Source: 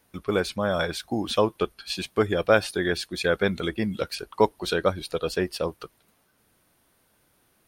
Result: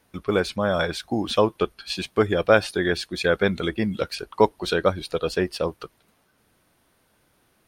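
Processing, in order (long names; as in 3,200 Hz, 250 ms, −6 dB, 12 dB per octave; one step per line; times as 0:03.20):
high-shelf EQ 8,900 Hz −7.5 dB
level +2.5 dB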